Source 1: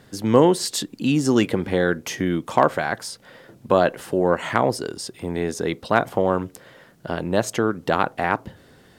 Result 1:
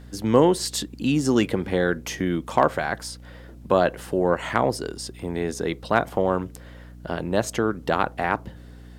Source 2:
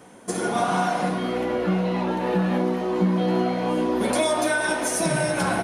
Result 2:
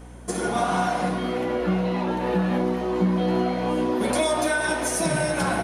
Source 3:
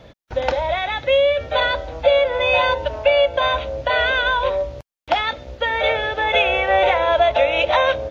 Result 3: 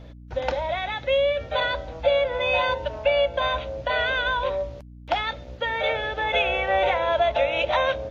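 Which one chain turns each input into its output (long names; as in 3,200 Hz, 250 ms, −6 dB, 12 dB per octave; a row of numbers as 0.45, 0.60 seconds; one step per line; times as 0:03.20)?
mains hum 60 Hz, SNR 19 dB
loudness normalisation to −24 LKFS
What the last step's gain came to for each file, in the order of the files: −2.0, −0.5, −5.5 decibels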